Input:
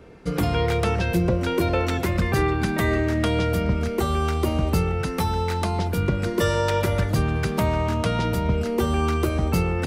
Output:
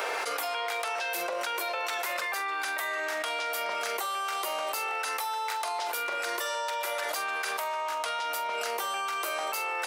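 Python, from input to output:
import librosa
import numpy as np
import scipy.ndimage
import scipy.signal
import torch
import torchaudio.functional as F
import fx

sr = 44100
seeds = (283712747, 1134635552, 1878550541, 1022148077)

y = scipy.signal.sosfilt(scipy.signal.butter(4, 670.0, 'highpass', fs=sr, output='sos'), x)
y = fx.high_shelf(y, sr, hz=9200.0, db=7.5)
y = fx.doubler(y, sr, ms=44.0, db=-12.0)
y = fx.env_flatten(y, sr, amount_pct=100)
y = y * 10.0 ** (-7.5 / 20.0)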